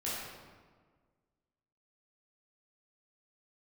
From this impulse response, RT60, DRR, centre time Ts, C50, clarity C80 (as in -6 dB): 1.6 s, -9.0 dB, 0.101 s, -2.0 dB, 0.5 dB